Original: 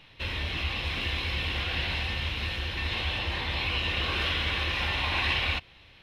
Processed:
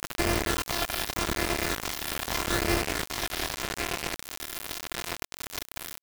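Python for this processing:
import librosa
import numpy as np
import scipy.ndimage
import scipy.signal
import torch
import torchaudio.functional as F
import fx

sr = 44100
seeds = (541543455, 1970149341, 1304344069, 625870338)

p1 = np.r_[np.sort(x[:len(x) // 128 * 128].reshape(-1, 128), axis=1).ravel(), x[len(x) // 128 * 128:]]
p2 = fx.over_compress(p1, sr, threshold_db=-41.0, ratio=-1.0)
p3 = p2 + 10.0 ** (-12.0 / 20.0) * np.pad(p2, (int(880 * sr / 1000.0), 0))[:len(p2)]
p4 = fx.phaser_stages(p3, sr, stages=8, low_hz=290.0, high_hz=1100.0, hz=0.82, feedback_pct=30)
p5 = fx.peak_eq(p4, sr, hz=61.0, db=-8.0, octaves=0.75)
p6 = p5 + fx.echo_wet_lowpass(p5, sr, ms=408, feedback_pct=73, hz=3100.0, wet_db=-17.5, dry=0)
p7 = fx.quant_companded(p6, sr, bits=2)
p8 = fx.doppler_dist(p7, sr, depth_ms=0.61, at=(2.82, 4.15))
y = p8 * librosa.db_to_amplitude(6.5)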